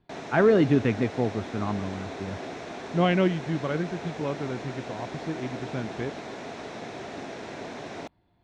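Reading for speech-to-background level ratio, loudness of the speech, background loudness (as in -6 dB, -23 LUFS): 10.5 dB, -27.5 LUFS, -38.0 LUFS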